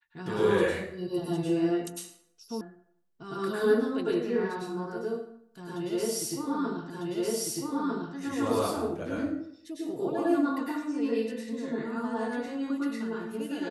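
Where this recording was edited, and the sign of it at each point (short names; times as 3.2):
2.61 sound cut off
6.9 repeat of the last 1.25 s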